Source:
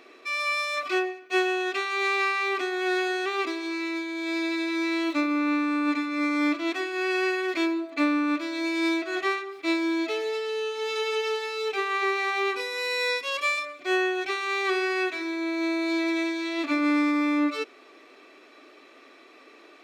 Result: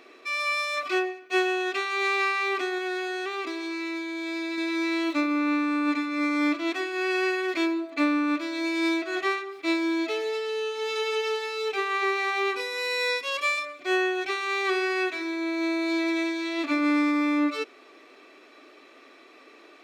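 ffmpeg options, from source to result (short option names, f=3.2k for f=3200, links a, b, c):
-filter_complex "[0:a]asettb=1/sr,asplit=3[a][b][c];[a]atrim=end=2.784[d];[b]atrim=start=2.78:end=4.58,asetpts=PTS-STARTPTS,afade=t=in:d=0.004:c=qsin,afade=t=out:st=1.796:d=0.004:c=qsin,acompressor=threshold=-29dB:ratio=2.5:attack=3.2:release=140:knee=1:detection=peak[e];[c]atrim=start=4.576[f];[d][e]acrossfade=d=0.004:c1=hsin:c2=qsin[g];[g][f]acrossfade=d=0.004:c1=qsin:c2=hsin"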